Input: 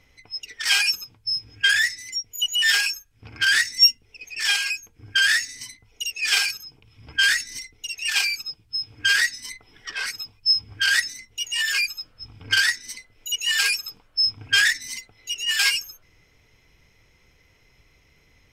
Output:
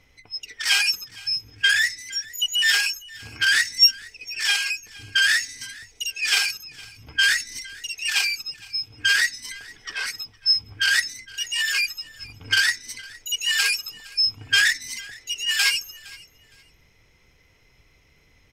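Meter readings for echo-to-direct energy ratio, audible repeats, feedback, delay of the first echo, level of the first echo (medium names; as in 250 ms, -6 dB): -22.0 dB, 2, 23%, 463 ms, -22.0 dB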